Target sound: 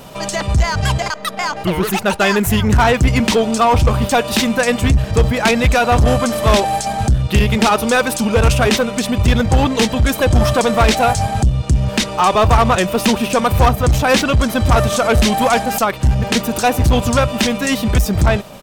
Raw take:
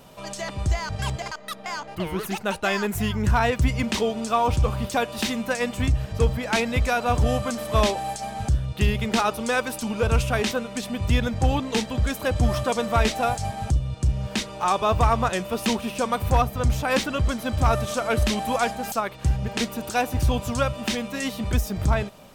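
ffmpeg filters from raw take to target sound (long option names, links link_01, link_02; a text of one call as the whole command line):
ffmpeg -i in.wav -af "atempo=1.2,aeval=exprs='0.299*(cos(1*acos(clip(val(0)/0.299,-1,1)))-cos(1*PI/2))+0.0422*(cos(5*acos(clip(val(0)/0.299,-1,1)))-cos(5*PI/2))':channel_layout=same,volume=7.5dB" out.wav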